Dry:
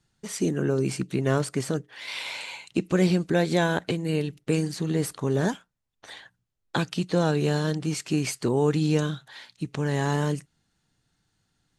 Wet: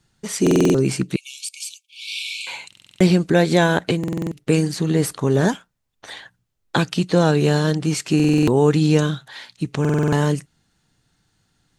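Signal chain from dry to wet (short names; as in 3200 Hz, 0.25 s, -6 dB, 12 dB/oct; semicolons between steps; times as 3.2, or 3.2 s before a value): 1.16–2.47 brick-wall FIR high-pass 2200 Hz; stuck buffer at 0.42/2.68/3.99/8.15/9.8, samples 2048, times 6; gain +7 dB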